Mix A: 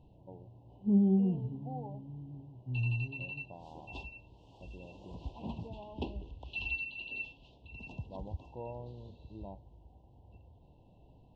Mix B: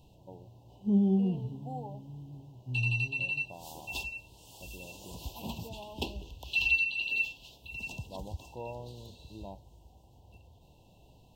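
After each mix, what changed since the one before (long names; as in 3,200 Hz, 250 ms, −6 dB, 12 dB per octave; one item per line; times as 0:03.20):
background: add parametric band 280 Hz −3 dB 0.26 octaves
master: remove head-to-tape spacing loss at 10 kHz 37 dB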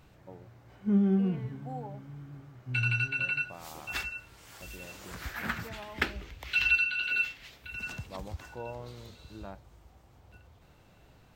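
master: remove Chebyshev band-stop filter 1,000–2,700 Hz, order 5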